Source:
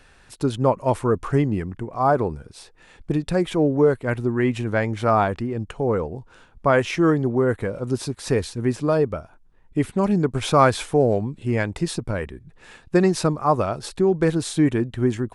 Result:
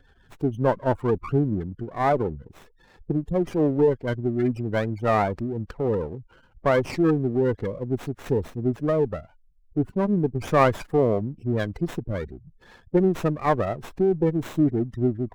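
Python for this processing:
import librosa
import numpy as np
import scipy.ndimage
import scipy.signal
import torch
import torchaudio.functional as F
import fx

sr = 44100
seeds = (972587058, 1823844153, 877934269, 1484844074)

y = fx.spec_gate(x, sr, threshold_db=-15, keep='strong')
y = fx.running_max(y, sr, window=9)
y = y * librosa.db_to_amplitude(-2.0)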